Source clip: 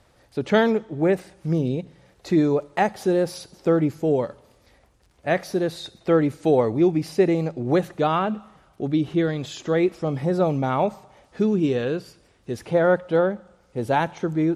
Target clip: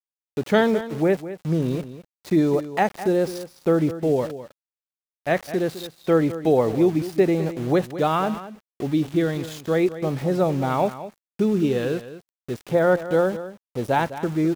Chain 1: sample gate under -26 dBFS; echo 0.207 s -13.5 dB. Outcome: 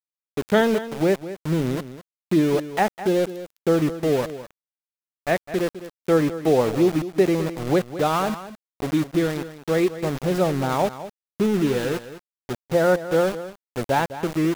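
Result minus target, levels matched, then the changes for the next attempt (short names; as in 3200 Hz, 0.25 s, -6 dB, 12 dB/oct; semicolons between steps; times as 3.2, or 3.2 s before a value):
sample gate: distortion +9 dB
change: sample gate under -34.5 dBFS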